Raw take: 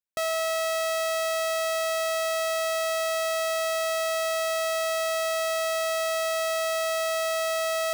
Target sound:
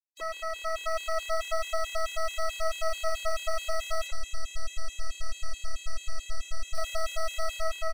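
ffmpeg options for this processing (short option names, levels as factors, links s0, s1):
-filter_complex "[0:a]aeval=exprs='0.0794*(cos(1*acos(clip(val(0)/0.0794,-1,1)))-cos(1*PI/2))+0.0251*(cos(3*acos(clip(val(0)/0.0794,-1,1)))-cos(3*PI/2))+0.00447*(cos(4*acos(clip(val(0)/0.0794,-1,1)))-cos(4*PI/2))':c=same,aemphasis=mode=reproduction:type=75fm,asettb=1/sr,asplit=3[s0][s1][s2];[s0]atrim=end=4.074[s3];[s1]atrim=start=4.07:end=6.75,asetpts=PTS-STARTPTS,afade=t=in:d=0.004:c=qsin,afade=t=out:st=2.676:d=0.004:c=qsin,acrossover=split=200|3000[s4][s5][s6];[s5]acompressor=threshold=0.00224:ratio=2[s7];[s4][s7][s6]amix=inputs=3:normalize=0[s8];[s2]atrim=start=6.746[s9];[s3][s8]acrossfade=d=0.004:c1=hsin:c2=qsin[s10];[s10][s9]acrossfade=d=0.004:c1=qsin:c2=hsin,asubboost=boost=7:cutoff=80,dynaudnorm=f=470:g=3:m=2.11,aeval=exprs='0.224*sin(PI/2*1.78*val(0)/0.224)':c=same,acrossover=split=3600[s11][s12];[s11]adelay=30[s13];[s13][s12]amix=inputs=2:normalize=0,flanger=delay=6.5:depth=9.5:regen=69:speed=0.4:shape=triangular,afftfilt=real='re*gt(sin(2*PI*4.6*pts/sr)*(1-2*mod(floor(b*sr/1024/280),2)),0)':imag='im*gt(sin(2*PI*4.6*pts/sr)*(1-2*mod(floor(b*sr/1024/280),2)),0)':win_size=1024:overlap=0.75,volume=0.501"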